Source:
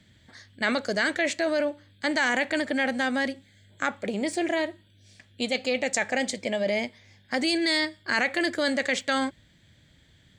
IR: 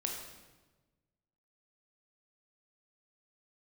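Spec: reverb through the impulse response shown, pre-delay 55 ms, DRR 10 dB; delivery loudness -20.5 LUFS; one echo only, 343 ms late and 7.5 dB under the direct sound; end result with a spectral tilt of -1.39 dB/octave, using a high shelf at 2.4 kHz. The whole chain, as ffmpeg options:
-filter_complex "[0:a]highshelf=f=2400:g=7.5,aecho=1:1:343:0.422,asplit=2[s0][s1];[1:a]atrim=start_sample=2205,adelay=55[s2];[s1][s2]afir=irnorm=-1:irlink=0,volume=0.251[s3];[s0][s3]amix=inputs=2:normalize=0,volume=1.41"

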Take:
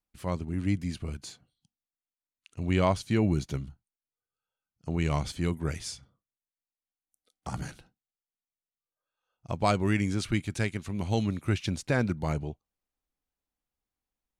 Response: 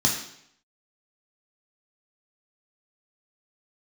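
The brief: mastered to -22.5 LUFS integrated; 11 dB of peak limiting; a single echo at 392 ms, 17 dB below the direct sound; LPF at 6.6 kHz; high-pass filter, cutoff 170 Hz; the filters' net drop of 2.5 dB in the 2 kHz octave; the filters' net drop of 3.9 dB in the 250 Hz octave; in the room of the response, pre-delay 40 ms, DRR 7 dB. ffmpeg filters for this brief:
-filter_complex "[0:a]highpass=170,lowpass=6600,equalizer=f=250:t=o:g=-3.5,equalizer=f=2000:t=o:g=-3,alimiter=limit=0.0794:level=0:latency=1,aecho=1:1:392:0.141,asplit=2[s0][s1];[1:a]atrim=start_sample=2205,adelay=40[s2];[s1][s2]afir=irnorm=-1:irlink=0,volume=0.106[s3];[s0][s3]amix=inputs=2:normalize=0,volume=4.22"

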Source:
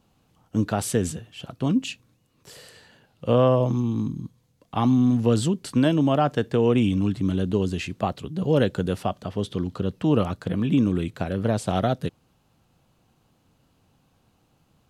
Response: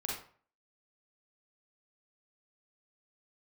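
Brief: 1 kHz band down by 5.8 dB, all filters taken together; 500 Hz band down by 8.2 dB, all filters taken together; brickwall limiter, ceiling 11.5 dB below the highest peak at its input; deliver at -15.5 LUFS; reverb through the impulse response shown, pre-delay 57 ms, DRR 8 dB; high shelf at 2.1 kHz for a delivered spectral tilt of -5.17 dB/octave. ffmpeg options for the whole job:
-filter_complex "[0:a]equalizer=f=500:t=o:g=-9,equalizer=f=1000:t=o:g=-6,highshelf=f=2100:g=7.5,alimiter=limit=0.0794:level=0:latency=1,asplit=2[s0][s1];[1:a]atrim=start_sample=2205,adelay=57[s2];[s1][s2]afir=irnorm=-1:irlink=0,volume=0.299[s3];[s0][s3]amix=inputs=2:normalize=0,volume=6.31"

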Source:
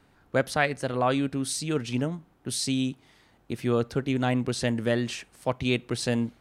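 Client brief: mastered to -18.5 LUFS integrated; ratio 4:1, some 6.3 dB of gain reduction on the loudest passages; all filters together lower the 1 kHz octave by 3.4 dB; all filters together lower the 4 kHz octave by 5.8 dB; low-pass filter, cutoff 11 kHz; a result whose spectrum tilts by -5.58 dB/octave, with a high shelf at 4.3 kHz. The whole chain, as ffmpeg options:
-af "lowpass=11000,equalizer=f=1000:t=o:g=-4.5,equalizer=f=4000:t=o:g=-3.5,highshelf=f=4300:g=-6.5,acompressor=threshold=0.0398:ratio=4,volume=5.62"

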